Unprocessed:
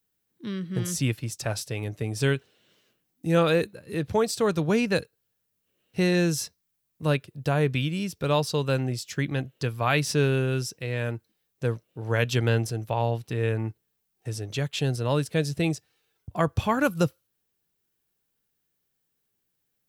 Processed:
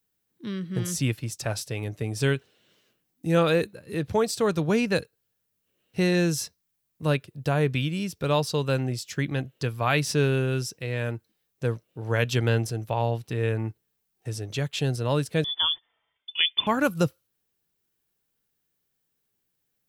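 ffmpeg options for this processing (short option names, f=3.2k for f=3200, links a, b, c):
-filter_complex "[0:a]asettb=1/sr,asplit=3[a][b][c];[a]atrim=end=15.444[d];[b]atrim=start=15.44:end=16.67,asetpts=PTS-STARTPTS,afade=t=in:d=0.004:c=qsin,afade=t=out:st=1.226:d=0.004:c=qsin,lowpass=f=3.1k:t=q:w=0.5098,lowpass=f=3.1k:t=q:w=0.6013,lowpass=f=3.1k:t=q:w=0.9,lowpass=f=3.1k:t=q:w=2.563,afreqshift=-3600[e];[c]atrim=start=16.666[f];[d][e]acrossfade=d=0.004:c1=hsin:c2=qsin[g];[g][f]acrossfade=d=0.004:c1=qsin:c2=hsin"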